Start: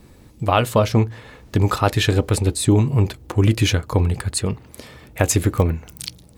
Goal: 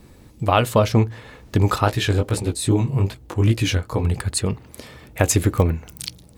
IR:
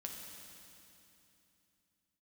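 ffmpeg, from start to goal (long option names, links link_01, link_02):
-filter_complex "[0:a]asplit=3[link_01][link_02][link_03];[link_01]afade=type=out:start_time=1.84:duration=0.02[link_04];[link_02]flanger=delay=15.5:depth=6.6:speed=2.5,afade=type=in:start_time=1.84:duration=0.02,afade=type=out:start_time=4.03:duration=0.02[link_05];[link_03]afade=type=in:start_time=4.03:duration=0.02[link_06];[link_04][link_05][link_06]amix=inputs=3:normalize=0"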